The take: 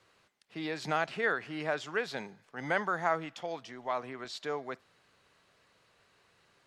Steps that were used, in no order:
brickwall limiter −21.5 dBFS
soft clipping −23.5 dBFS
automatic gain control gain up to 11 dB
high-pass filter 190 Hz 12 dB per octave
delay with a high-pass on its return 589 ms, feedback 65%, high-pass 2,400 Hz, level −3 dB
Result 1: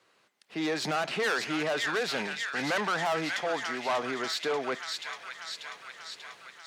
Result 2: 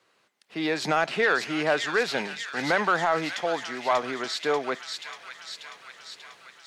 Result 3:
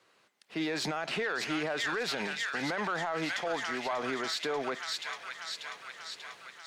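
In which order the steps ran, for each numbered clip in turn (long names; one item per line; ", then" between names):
automatic gain control, then delay with a high-pass on its return, then soft clipping, then high-pass filter, then brickwall limiter
high-pass filter, then brickwall limiter, then soft clipping, then automatic gain control, then delay with a high-pass on its return
automatic gain control, then delay with a high-pass on its return, then brickwall limiter, then high-pass filter, then soft clipping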